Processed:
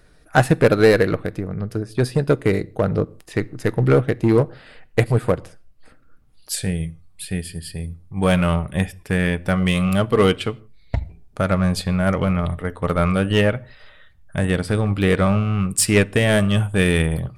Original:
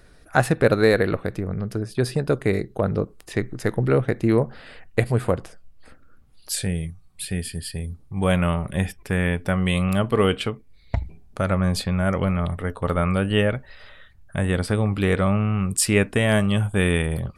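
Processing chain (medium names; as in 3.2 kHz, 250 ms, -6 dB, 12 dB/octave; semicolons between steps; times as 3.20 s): in parallel at -7 dB: wavefolder -16 dBFS; on the sum: reverberation, pre-delay 6 ms, DRR 15.5 dB; upward expansion 1.5:1, over -28 dBFS; trim +3 dB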